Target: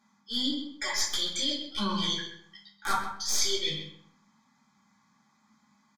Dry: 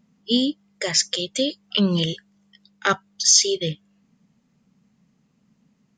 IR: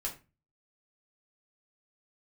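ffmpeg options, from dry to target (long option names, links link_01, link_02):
-filter_complex "[0:a]highpass=96,lowshelf=frequency=700:width_type=q:width=3:gain=-10.5,aecho=1:1:3.5:0.41,aeval=exprs='(mod(2.11*val(0)+1,2)-1)/2.11':channel_layout=same,aeval=exprs='(tanh(3.16*val(0)+0.25)-tanh(0.25))/3.16':channel_layout=same,areverse,acompressor=threshold=-30dB:ratio=12,areverse,asuperstop=centerf=2800:order=8:qfactor=5.3,asplit=2[link_01][link_02];[link_02]adelay=129,lowpass=frequency=3000:poles=1,volume=-8dB,asplit=2[link_03][link_04];[link_04]adelay=129,lowpass=frequency=3000:poles=1,volume=0.21,asplit=2[link_05][link_06];[link_06]adelay=129,lowpass=frequency=3000:poles=1,volume=0.21[link_07];[link_01][link_03][link_05][link_07]amix=inputs=4:normalize=0[link_08];[1:a]atrim=start_sample=2205,asetrate=26901,aresample=44100[link_09];[link_08][link_09]afir=irnorm=-1:irlink=0"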